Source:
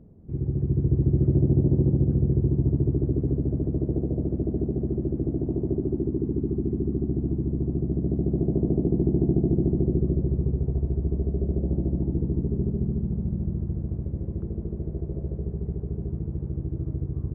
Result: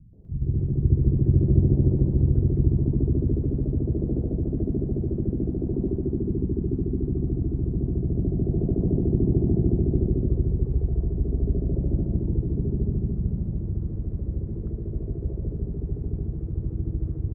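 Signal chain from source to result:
pitch-shifted copies added −7 semitones −2 dB
three-band delay without the direct sound lows, mids, highs 130/250 ms, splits 210/790 Hz

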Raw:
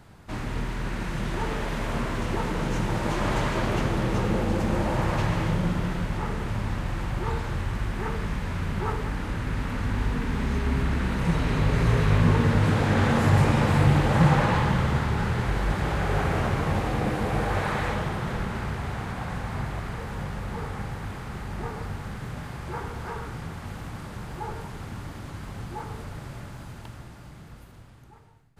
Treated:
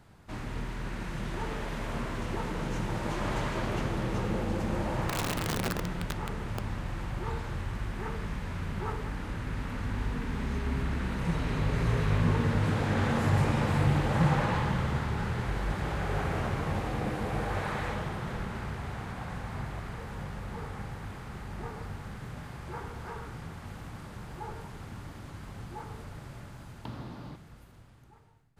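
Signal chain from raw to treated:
0:05.09–0:06.60: wrap-around overflow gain 18.5 dB
0:26.85–0:27.36: octave-band graphic EQ 125/250/500/1,000/4,000/8,000 Hz +5/+12/+6/+8/+9/−5 dB
level −6 dB

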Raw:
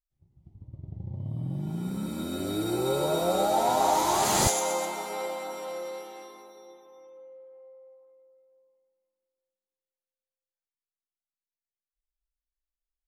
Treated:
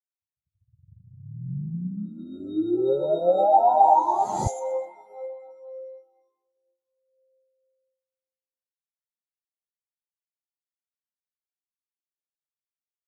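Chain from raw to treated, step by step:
0:00.99–0:01.50: high-pass filter 110 Hz
every bin expanded away from the loudest bin 2.5 to 1
level +3.5 dB

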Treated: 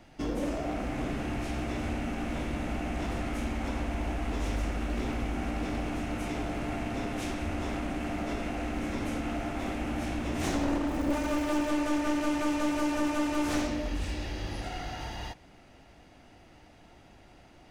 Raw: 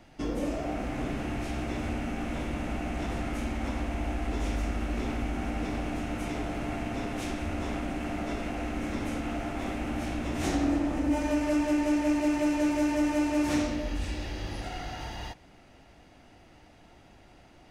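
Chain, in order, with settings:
wavefolder on the positive side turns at −26.5 dBFS
0:10.87–0:11.68: surface crackle 300 per second −37 dBFS

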